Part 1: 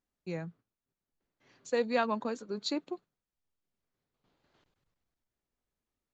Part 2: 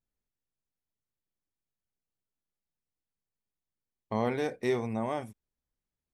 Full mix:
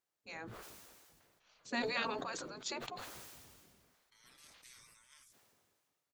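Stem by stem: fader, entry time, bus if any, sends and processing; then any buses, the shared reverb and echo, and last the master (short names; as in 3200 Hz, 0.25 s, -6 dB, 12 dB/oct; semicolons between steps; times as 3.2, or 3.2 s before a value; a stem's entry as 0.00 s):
+1.0 dB, 0.00 s, no send, dry
-17.5 dB, 0.00 s, no send, elliptic high-pass 1200 Hz, stop band 40 dB; resonant high shelf 3600 Hz +13.5 dB, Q 1.5; comb 6.7 ms, depth 53%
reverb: off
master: spectral gate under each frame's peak -10 dB weak; sustainer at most 29 dB/s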